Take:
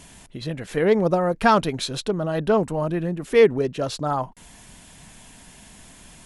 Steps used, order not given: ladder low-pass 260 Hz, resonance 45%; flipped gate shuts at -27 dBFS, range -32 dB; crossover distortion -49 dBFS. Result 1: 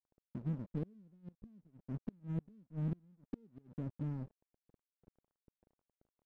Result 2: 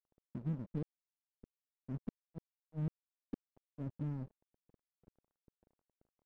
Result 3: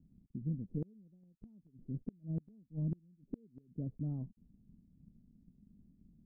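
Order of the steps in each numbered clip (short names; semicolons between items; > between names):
ladder low-pass > crossover distortion > flipped gate; ladder low-pass > flipped gate > crossover distortion; crossover distortion > ladder low-pass > flipped gate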